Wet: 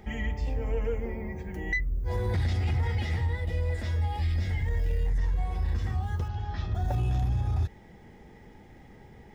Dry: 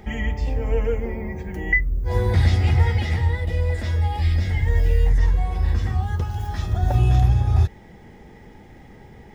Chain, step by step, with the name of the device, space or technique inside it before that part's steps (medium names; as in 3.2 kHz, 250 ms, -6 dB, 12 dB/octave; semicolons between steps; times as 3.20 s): 6.28–6.75 s: low-pass 5 kHz 24 dB/octave; soft clipper into limiter (saturation -10 dBFS, distortion -21 dB; peak limiter -15 dBFS, peak gain reduction 4 dB); trim -6 dB